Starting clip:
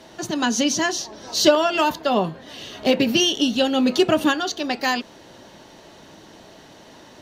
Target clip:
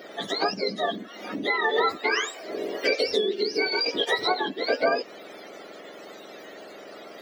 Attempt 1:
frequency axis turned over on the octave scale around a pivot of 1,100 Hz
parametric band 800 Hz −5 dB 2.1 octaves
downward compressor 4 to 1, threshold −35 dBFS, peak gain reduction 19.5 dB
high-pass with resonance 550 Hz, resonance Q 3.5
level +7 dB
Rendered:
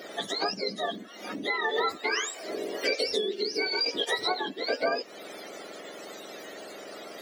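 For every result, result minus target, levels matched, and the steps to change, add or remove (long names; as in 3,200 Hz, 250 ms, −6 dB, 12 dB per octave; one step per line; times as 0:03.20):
8,000 Hz band +6.0 dB; downward compressor: peak gain reduction +5 dB
add after high-pass with resonance: parametric band 9,300 Hz −10.5 dB 1.3 octaves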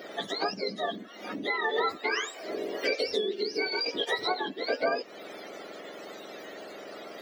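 downward compressor: peak gain reduction +5 dB
change: downward compressor 4 to 1, threshold −28.5 dBFS, peak gain reduction 14.5 dB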